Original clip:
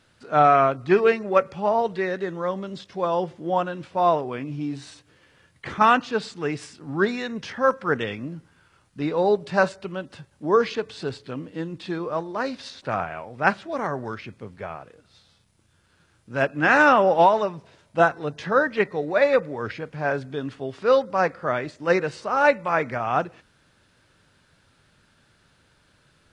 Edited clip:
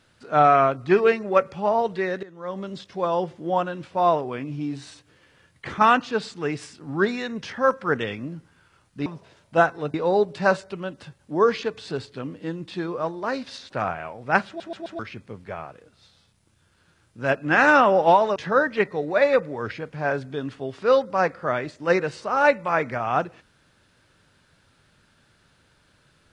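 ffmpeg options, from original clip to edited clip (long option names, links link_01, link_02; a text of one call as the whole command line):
ffmpeg -i in.wav -filter_complex "[0:a]asplit=9[link_01][link_02][link_03][link_04][link_05][link_06][link_07][link_08][link_09];[link_01]atrim=end=2.23,asetpts=PTS-STARTPTS,afade=type=out:start_time=2.226:duration=0.004:curve=hsin:silence=0.149624[link_10];[link_02]atrim=start=2.23:end=9.062,asetpts=PTS-STARTPTS,afade=type=in:duration=0.38:curve=qua:silence=0.149624[link_11];[link_03]atrim=start=17.478:end=18.362[link_12];[link_04]atrim=start=9.058:end=13.722[link_13];[link_05]atrim=start=13.588:end=13.722[link_14];[link_06]atrim=start=13.588:end=13.722[link_15];[link_07]atrim=start=13.588:end=13.722[link_16];[link_08]atrim=start=14.108:end=17.482[link_17];[link_09]atrim=start=18.358[link_18];[link_10][link_11]concat=n=2:v=0:a=1[link_19];[link_19][link_12]acrossfade=duration=0.004:curve1=hsin:curve2=hsin[link_20];[link_20][link_13]acrossfade=duration=0.004:curve1=hsin:curve2=hsin[link_21];[link_21][link_14]acrossfade=duration=0.004:curve1=hsin:curve2=hsin[link_22];[link_22][link_15]acrossfade=duration=0.004:curve1=hsin:curve2=hsin[link_23];[link_23][link_16]acrossfade=duration=0.004:curve1=hsin:curve2=hsin[link_24];[link_24][link_17]acrossfade=duration=0.004:curve1=hsin:curve2=hsin[link_25];[link_25][link_18]acrossfade=duration=0.004:curve1=hsin:curve2=hsin" out.wav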